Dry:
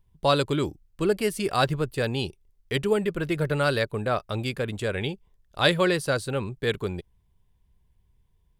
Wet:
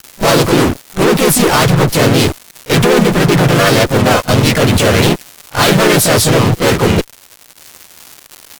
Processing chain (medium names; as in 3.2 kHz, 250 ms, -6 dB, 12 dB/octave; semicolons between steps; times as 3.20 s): crackle 350 per s -45 dBFS; fuzz box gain 46 dB, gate -44 dBFS; harmony voices -3 st -2 dB, +3 st 0 dB; on a send: reverse echo 37 ms -21 dB; on the sum: trim +1 dB